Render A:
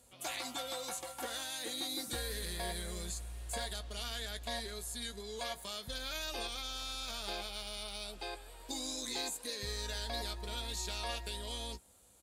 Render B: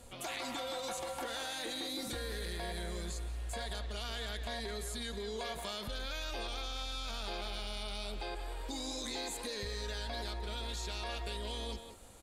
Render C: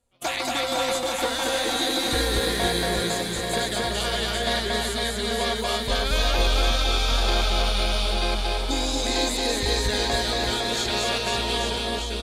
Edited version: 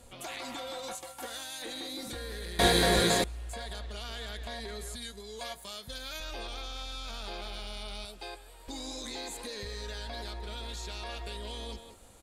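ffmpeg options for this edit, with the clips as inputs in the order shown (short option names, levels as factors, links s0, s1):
-filter_complex "[0:a]asplit=3[s0][s1][s2];[1:a]asplit=5[s3][s4][s5][s6][s7];[s3]atrim=end=0.952[s8];[s0]atrim=start=0.948:end=1.622[s9];[s4]atrim=start=1.618:end=2.592[s10];[2:a]atrim=start=2.588:end=3.242[s11];[s5]atrim=start=3.238:end=4.962[s12];[s1]atrim=start=4.958:end=6.202[s13];[s6]atrim=start=6.198:end=8.052[s14];[s2]atrim=start=8.048:end=8.682[s15];[s7]atrim=start=8.678[s16];[s8][s9]acrossfade=d=0.004:c1=hsin:c2=hsin[s17];[s17][s10]acrossfade=d=0.004:c1=hsin:c2=hsin[s18];[s18][s11]acrossfade=d=0.004:c1=hsin:c2=hsin[s19];[s19][s12]acrossfade=d=0.004:c1=hsin:c2=hsin[s20];[s20][s13]acrossfade=d=0.004:c1=hsin:c2=hsin[s21];[s21][s14]acrossfade=d=0.004:c1=hsin:c2=hsin[s22];[s22][s15]acrossfade=d=0.004:c1=hsin:c2=hsin[s23];[s23][s16]acrossfade=d=0.004:c1=hsin:c2=hsin"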